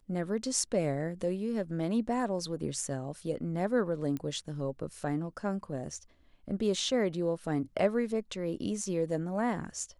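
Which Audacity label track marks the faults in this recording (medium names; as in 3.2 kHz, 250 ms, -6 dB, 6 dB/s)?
4.170000	4.170000	pop -24 dBFS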